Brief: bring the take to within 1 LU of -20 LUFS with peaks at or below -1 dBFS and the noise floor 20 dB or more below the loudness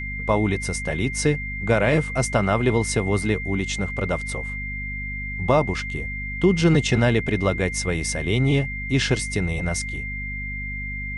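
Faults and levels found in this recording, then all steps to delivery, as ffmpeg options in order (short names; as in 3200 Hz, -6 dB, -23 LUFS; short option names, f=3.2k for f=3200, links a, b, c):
hum 50 Hz; harmonics up to 250 Hz; hum level -31 dBFS; steady tone 2100 Hz; tone level -30 dBFS; loudness -23.0 LUFS; peak -5.5 dBFS; loudness target -20.0 LUFS
-> -af "bandreject=f=50:t=h:w=4,bandreject=f=100:t=h:w=4,bandreject=f=150:t=h:w=4,bandreject=f=200:t=h:w=4,bandreject=f=250:t=h:w=4"
-af "bandreject=f=2.1k:w=30"
-af "volume=3dB"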